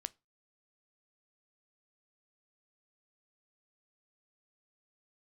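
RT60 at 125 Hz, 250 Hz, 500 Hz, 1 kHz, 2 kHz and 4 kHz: 0.35 s, 0.25 s, 0.25 s, 0.25 s, 0.20 s, 0.20 s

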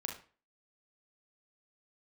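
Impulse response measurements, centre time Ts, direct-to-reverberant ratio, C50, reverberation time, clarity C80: 25 ms, 1.0 dB, 6.5 dB, 0.40 s, 13.0 dB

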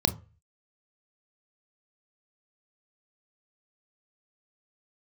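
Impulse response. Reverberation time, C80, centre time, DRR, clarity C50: 0.35 s, 23.0 dB, 6 ms, 10.0 dB, 18.0 dB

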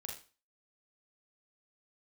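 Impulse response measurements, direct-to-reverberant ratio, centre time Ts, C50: -0.5 dB, 30 ms, 5.5 dB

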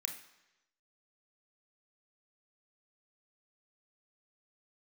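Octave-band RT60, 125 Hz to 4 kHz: 0.90 s, 0.90 s, 1.0 s, 1.0 s, 1.0 s, 1.0 s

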